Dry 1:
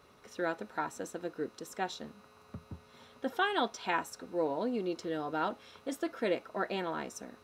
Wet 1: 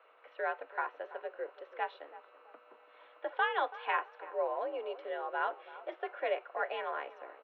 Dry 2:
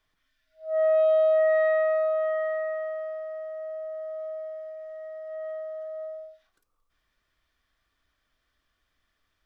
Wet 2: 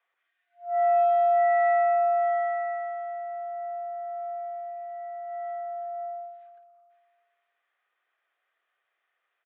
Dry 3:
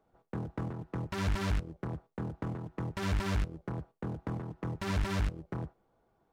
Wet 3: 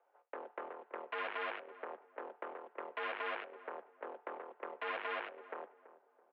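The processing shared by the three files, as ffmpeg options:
-filter_complex "[0:a]highpass=f=410:t=q:w=0.5412,highpass=f=410:t=q:w=1.307,lowpass=f=2.9k:t=q:w=0.5176,lowpass=f=2.9k:t=q:w=0.7071,lowpass=f=2.9k:t=q:w=1.932,afreqshift=64,asplit=2[a][b];[b]adelay=331,lowpass=f=1.2k:p=1,volume=-14.5dB,asplit=2[c][d];[d]adelay=331,lowpass=f=1.2k:p=1,volume=0.38,asplit=2[e][f];[f]adelay=331,lowpass=f=1.2k:p=1,volume=0.38,asplit=2[g][h];[h]adelay=331,lowpass=f=1.2k:p=1,volume=0.38[i];[a][c][e][g][i]amix=inputs=5:normalize=0"

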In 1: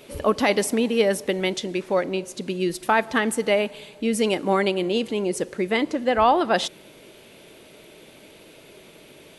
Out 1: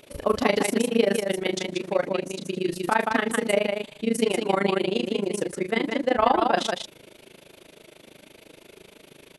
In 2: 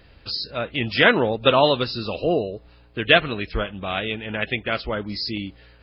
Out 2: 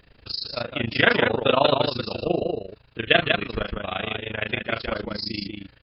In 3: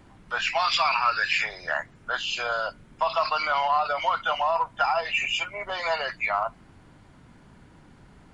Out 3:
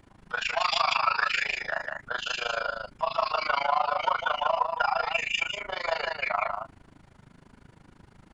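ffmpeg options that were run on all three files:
-af "aecho=1:1:34.99|174.9:0.447|0.631,tremolo=f=26:d=0.919"

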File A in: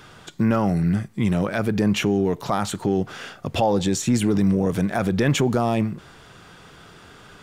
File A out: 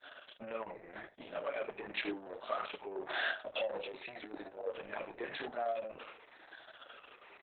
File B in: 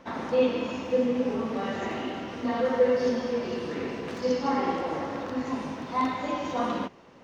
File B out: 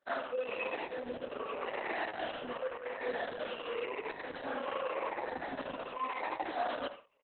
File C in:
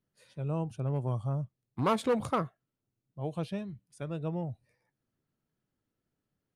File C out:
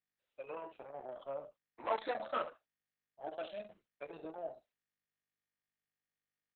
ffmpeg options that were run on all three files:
-af "afftfilt=real='re*pow(10,11/40*sin(2*PI*(0.82*log(max(b,1)*sr/1024/100)/log(2)-(-0.9)*(pts-256)/sr)))':imag='im*pow(10,11/40*sin(2*PI*(0.82*log(max(b,1)*sr/1024/100)/log(2)-(-0.9)*(pts-256)/sr)))':win_size=1024:overlap=0.75,agate=range=-33dB:threshold=-37dB:ratio=3:detection=peak,equalizer=f=4.9k:t=o:w=0.35:g=-10.5,areverse,acompressor=threshold=-29dB:ratio=6,areverse,asoftclip=type=tanh:threshold=-27.5dB,flanger=delay=6.9:depth=2.5:regen=13:speed=0.71:shape=sinusoidal,highpass=f=350:w=0.5412,highpass=f=350:w=1.3066,equalizer=f=390:t=q:w=4:g=-3,equalizer=f=620:t=q:w=4:g=7,equalizer=f=1.7k:t=q:w=4:g=4,equalizer=f=2.6k:t=q:w=4:g=4,lowpass=f=6.3k:w=0.5412,lowpass=f=6.3k:w=1.3066,aecho=1:1:29|75:0.376|0.282,volume=1.5dB" -ar 48000 -c:a libopus -b:a 6k

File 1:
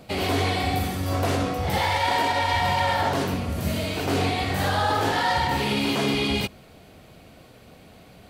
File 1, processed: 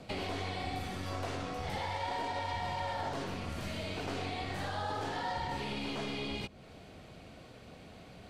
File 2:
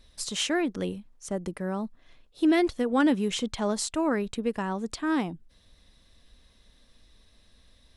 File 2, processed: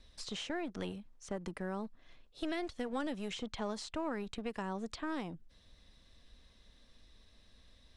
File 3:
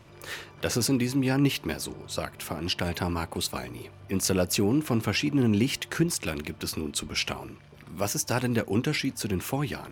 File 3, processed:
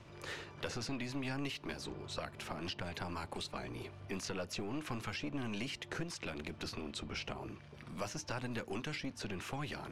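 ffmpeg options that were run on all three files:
-filter_complex "[0:a]lowpass=7.8k,acrossover=split=870|4600[a][b][c];[a]acompressor=threshold=-33dB:ratio=4[d];[b]acompressor=threshold=-41dB:ratio=4[e];[c]acompressor=threshold=-53dB:ratio=4[f];[d][e][f]amix=inputs=3:normalize=0,acrossover=split=620[g][h];[g]aeval=exprs='clip(val(0),-1,0.00841)':c=same[i];[i][h]amix=inputs=2:normalize=0,volume=-3dB"

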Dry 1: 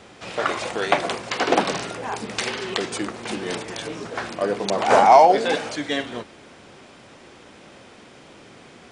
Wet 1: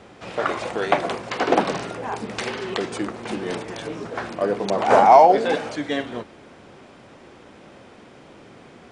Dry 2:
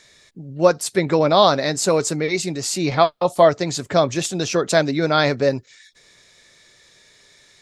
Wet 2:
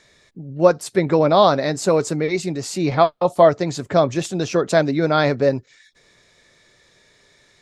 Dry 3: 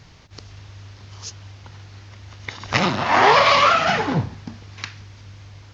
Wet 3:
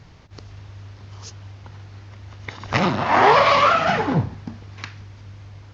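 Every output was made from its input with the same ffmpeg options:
-af "highshelf=f=2.2k:g=-8.5,volume=1.5dB"

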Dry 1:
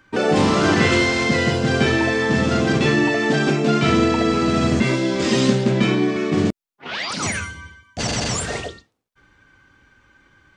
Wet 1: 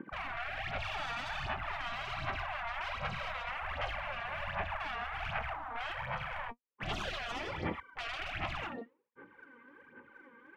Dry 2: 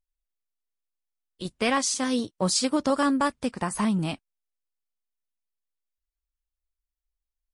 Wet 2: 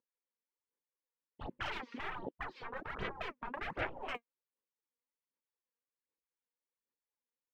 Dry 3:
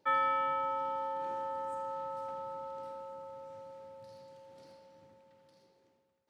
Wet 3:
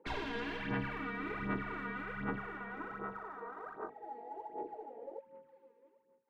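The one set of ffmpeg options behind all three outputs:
-filter_complex "[0:a]asuperstop=centerf=690:order=4:qfactor=2,highpass=210,equalizer=f=240:t=q:w=4:g=4,equalizer=f=510:t=q:w=4:g=7,equalizer=f=840:t=q:w=4:g=4,equalizer=f=1.3k:t=q:w=4:g=-7,lowpass=f=2.7k:w=0.5412,lowpass=f=2.7k:w=1.3066,acompressor=threshold=-33dB:ratio=5,afwtdn=0.00501,asplit=2[a][b];[b]highpass=f=720:p=1,volume=17dB,asoftclip=type=tanh:threshold=-22.5dB[c];[a][c]amix=inputs=2:normalize=0,lowpass=f=1.2k:p=1,volume=-6dB,afftfilt=real='re*lt(hypot(re,im),0.02)':imag='im*lt(hypot(re,im),0.02)':win_size=1024:overlap=0.75,aphaser=in_gain=1:out_gain=1:delay=4.3:decay=0.66:speed=1.3:type=sinusoidal,highshelf=f=2.1k:g=-9,volume=10dB"

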